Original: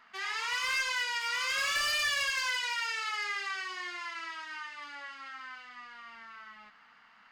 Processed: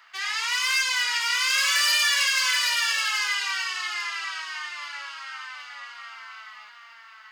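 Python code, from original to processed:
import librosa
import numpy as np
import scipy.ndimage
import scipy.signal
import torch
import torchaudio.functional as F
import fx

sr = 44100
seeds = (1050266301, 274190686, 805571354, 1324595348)

y = scipy.signal.sosfilt(scipy.signal.butter(2, 680.0, 'highpass', fs=sr, output='sos'), x)
y = fx.high_shelf(y, sr, hz=2200.0, db=10.0)
y = y + 10.0 ** (-5.5 / 20.0) * np.pad(y, (int(777 * sr / 1000.0), 0))[:len(y)]
y = y * librosa.db_to_amplitude(2.0)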